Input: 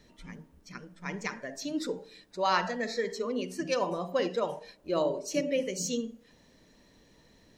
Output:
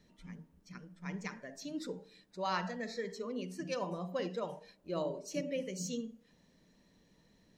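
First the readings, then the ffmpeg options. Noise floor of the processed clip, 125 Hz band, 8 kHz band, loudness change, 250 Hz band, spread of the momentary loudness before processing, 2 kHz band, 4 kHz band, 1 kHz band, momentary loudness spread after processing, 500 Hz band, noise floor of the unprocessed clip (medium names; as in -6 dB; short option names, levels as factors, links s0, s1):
-69 dBFS, -1.5 dB, -8.5 dB, -7.5 dB, -6.0 dB, 18 LU, -8.5 dB, -8.5 dB, -8.5 dB, 15 LU, -8.5 dB, -62 dBFS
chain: -af "equalizer=f=180:w=2.8:g=8,volume=0.376"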